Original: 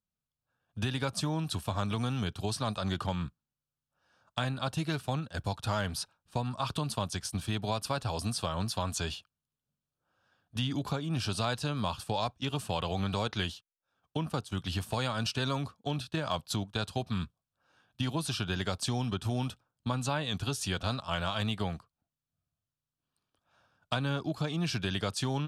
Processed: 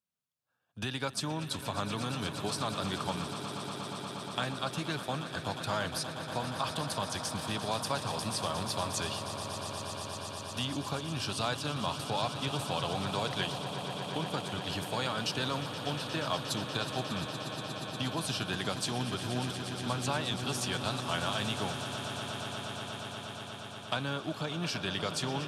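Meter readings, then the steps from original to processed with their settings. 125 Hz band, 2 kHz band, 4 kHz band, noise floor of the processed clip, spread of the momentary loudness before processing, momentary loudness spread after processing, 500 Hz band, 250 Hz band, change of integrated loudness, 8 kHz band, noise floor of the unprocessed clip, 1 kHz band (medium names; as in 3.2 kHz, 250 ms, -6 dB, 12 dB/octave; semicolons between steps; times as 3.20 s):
-4.0 dB, +2.0 dB, +2.0 dB, -44 dBFS, 5 LU, 6 LU, +0.5 dB, -2.0 dB, -1.0 dB, +2.0 dB, under -85 dBFS, +1.5 dB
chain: high-pass 95 Hz; bass shelf 280 Hz -6.5 dB; echo with a slow build-up 119 ms, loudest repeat 8, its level -13.5 dB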